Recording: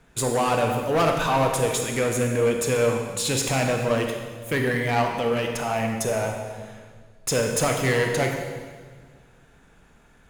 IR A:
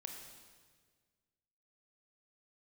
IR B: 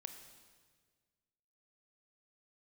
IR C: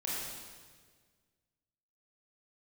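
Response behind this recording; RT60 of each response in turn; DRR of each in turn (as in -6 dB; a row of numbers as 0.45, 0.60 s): A; 1.6, 1.6, 1.6 s; 2.5, 6.5, -6.5 dB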